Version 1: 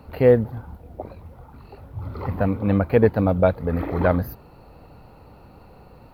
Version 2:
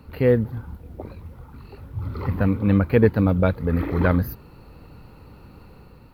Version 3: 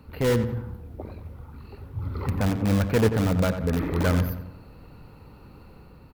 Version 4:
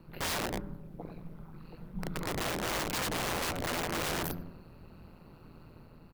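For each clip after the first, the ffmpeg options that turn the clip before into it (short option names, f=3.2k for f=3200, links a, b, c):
-af "equalizer=f=690:w=1.7:g=-10.5,dynaudnorm=f=130:g=7:m=3dB"
-filter_complex "[0:a]asplit=2[a][b];[b]aeval=exprs='(mod(5.01*val(0)+1,2)-1)/5.01':c=same,volume=-7.5dB[c];[a][c]amix=inputs=2:normalize=0,asplit=2[d][e];[e]adelay=90,lowpass=f=2.7k:p=1,volume=-9dB,asplit=2[f][g];[g]adelay=90,lowpass=f=2.7k:p=1,volume=0.51,asplit=2[h][i];[i]adelay=90,lowpass=f=2.7k:p=1,volume=0.51,asplit=2[j][k];[k]adelay=90,lowpass=f=2.7k:p=1,volume=0.51,asplit=2[l][m];[m]adelay=90,lowpass=f=2.7k:p=1,volume=0.51,asplit=2[n][o];[o]adelay=90,lowpass=f=2.7k:p=1,volume=0.51[p];[d][f][h][j][l][n][p]amix=inputs=7:normalize=0,volume=-5.5dB"
-af "aeval=exprs='val(0)*sin(2*PI*83*n/s)':c=same,aeval=exprs='(mod(17.8*val(0)+1,2)-1)/17.8':c=same,volume=-2.5dB"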